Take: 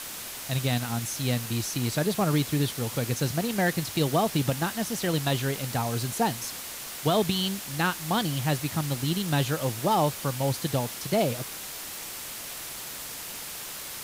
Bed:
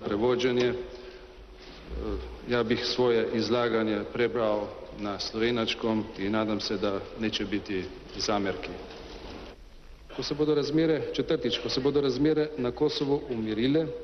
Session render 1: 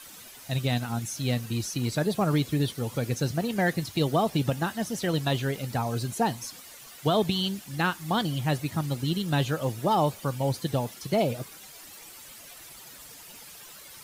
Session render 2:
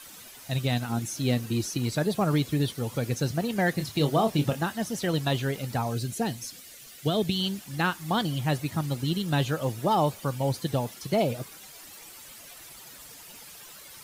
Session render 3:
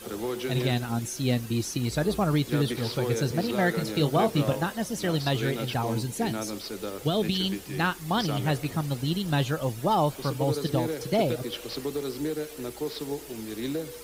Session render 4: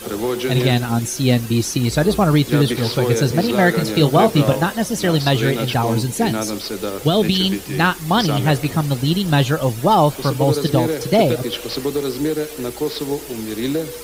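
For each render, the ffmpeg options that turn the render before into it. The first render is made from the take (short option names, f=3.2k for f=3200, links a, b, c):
-af "afftdn=nr=12:nf=-38"
-filter_complex "[0:a]asettb=1/sr,asplit=3[a][b][c];[a]atrim=end=0.894[d];[b]atrim=start=0.89:end=1.77,asetpts=PTS-STARTPTS,afade=t=in:d=0.004:c=qsin,afade=t=out:st=0.876:d=0.004:c=qsin,equalizer=f=330:w=1.5:g=6.5[e];[c]atrim=start=1.766[f];[d][e]acrossfade=d=0.004:c1=hsin:c2=qsin[g];[g][f]acrossfade=d=0.004:c1=qsin:c2=hsin,asettb=1/sr,asplit=3[h][i][j];[h]atrim=end=3.754[k];[i]atrim=start=3.75:end=4.61,asetpts=PTS-STARTPTS,afade=t=in:d=0.004:c=qsin,afade=t=out:st=0.856:d=0.004:c=qsin,asplit=2[l][m];[m]adelay=27,volume=-8dB[n];[l][n]amix=inputs=2:normalize=0,atrim=end_sample=37926[o];[j]atrim=start=4.606[p];[k][o]acrossfade=d=0.004:c1=hsin:c2=qsin[q];[q][p]acrossfade=d=0.004:c1=qsin:c2=hsin,asettb=1/sr,asplit=3[r][s][t];[r]atrim=end=5.934[u];[s]atrim=start=5.93:end=7.4,asetpts=PTS-STARTPTS,afade=t=in:d=0.004:c=qsin,afade=t=out:st=1.466:d=0.004:c=qsin,equalizer=f=970:w=1.4:g=-10.5[v];[t]atrim=start=7.396[w];[u][v]acrossfade=d=0.004:c1=hsin:c2=qsin[x];[x][w]acrossfade=d=0.004:c1=qsin:c2=hsin"
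-filter_complex "[1:a]volume=-6.5dB[a];[0:a][a]amix=inputs=2:normalize=0"
-af "volume=10dB"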